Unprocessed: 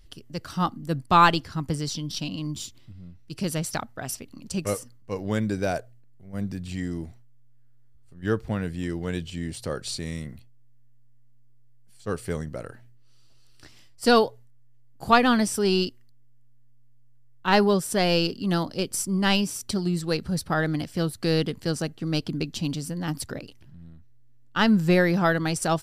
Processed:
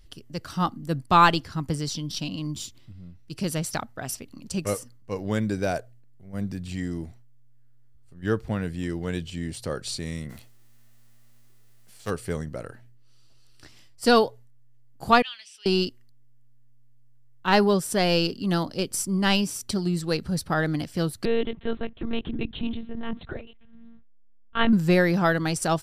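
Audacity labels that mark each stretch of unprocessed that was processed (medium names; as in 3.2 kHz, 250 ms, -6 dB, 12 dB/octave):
10.290000	12.090000	formants flattened exponent 0.6
15.220000	15.660000	ladder band-pass 3.1 kHz, resonance 65%
21.250000	24.730000	monotone LPC vocoder at 8 kHz 230 Hz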